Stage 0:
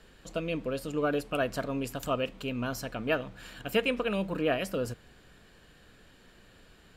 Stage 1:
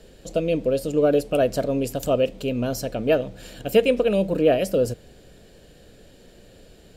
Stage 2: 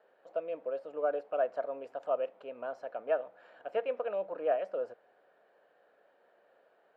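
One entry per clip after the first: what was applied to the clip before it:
drawn EQ curve 270 Hz 0 dB, 570 Hz +5 dB, 1,100 Hz −12 dB, 5,500 Hz 0 dB; level +8 dB
flat-topped band-pass 1,000 Hz, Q 1.1; level −5 dB

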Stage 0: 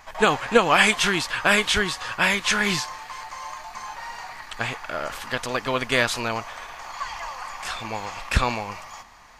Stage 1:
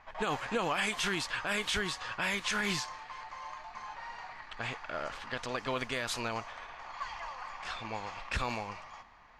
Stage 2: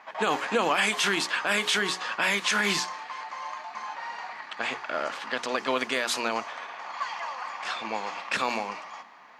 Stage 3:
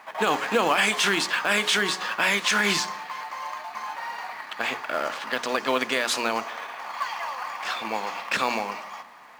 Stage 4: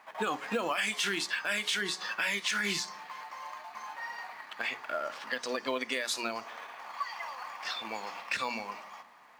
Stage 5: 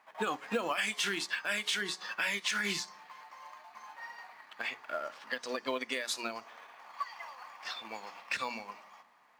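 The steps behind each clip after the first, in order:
low-pass that shuts in the quiet parts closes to 2,800 Hz, open at −18 dBFS; brickwall limiter −14 dBFS, peak gain reduction 9 dB; level −8 dB
high-pass filter 200 Hz 24 dB per octave; mains-hum notches 60/120/180/240/300/360/420 Hz; level +7.5 dB
in parallel at −9 dB: log-companded quantiser 4 bits; on the sum: convolution reverb RT60 1.1 s, pre-delay 38 ms, DRR 17.5 dB
noise reduction from a noise print of the clip's start 9 dB; downward compressor 2.5 to 1, threshold −32 dBFS, peak gain reduction 9.5 dB
expander for the loud parts 1.5 to 1, over −43 dBFS

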